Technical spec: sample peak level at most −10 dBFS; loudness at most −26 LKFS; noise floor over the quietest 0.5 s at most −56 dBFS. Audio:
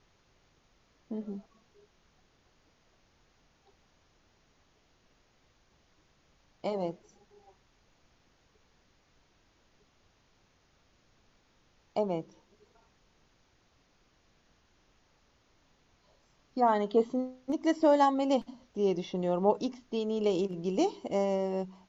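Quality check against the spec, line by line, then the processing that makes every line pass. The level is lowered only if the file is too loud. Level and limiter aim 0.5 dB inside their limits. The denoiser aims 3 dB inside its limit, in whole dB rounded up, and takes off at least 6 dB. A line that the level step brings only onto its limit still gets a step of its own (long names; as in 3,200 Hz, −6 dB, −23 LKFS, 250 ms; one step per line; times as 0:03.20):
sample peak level −13.0 dBFS: in spec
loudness −30.5 LKFS: in spec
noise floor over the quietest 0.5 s −68 dBFS: in spec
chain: no processing needed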